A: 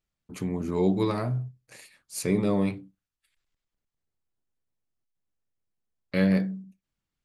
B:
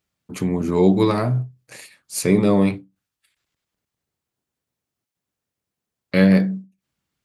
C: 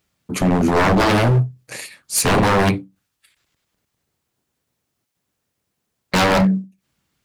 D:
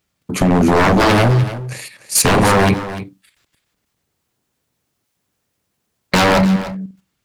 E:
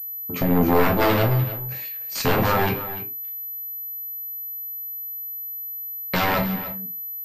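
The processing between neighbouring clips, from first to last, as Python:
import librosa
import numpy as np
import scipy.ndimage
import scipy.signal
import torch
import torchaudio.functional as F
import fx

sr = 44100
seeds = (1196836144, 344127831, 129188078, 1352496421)

y1 = scipy.signal.sosfilt(scipy.signal.butter(2, 82.0, 'highpass', fs=sr, output='sos'), x)
y1 = fx.end_taper(y1, sr, db_per_s=220.0)
y1 = y1 * 10.0 ** (8.5 / 20.0)
y2 = 10.0 ** (-18.5 / 20.0) * (np.abs((y1 / 10.0 ** (-18.5 / 20.0) + 3.0) % 4.0 - 2.0) - 1.0)
y2 = y2 * 10.0 ** (8.5 / 20.0)
y3 = fx.level_steps(y2, sr, step_db=10)
y3 = y3 + 10.0 ** (-13.5 / 20.0) * np.pad(y3, (int(296 * sr / 1000.0), 0))[:len(y3)]
y3 = y3 * 10.0 ** (8.0 / 20.0)
y4 = fx.resonator_bank(y3, sr, root=41, chord='major', decay_s=0.24)
y4 = fx.pwm(y4, sr, carrier_hz=12000.0)
y4 = y4 * 10.0 ** (3.0 / 20.0)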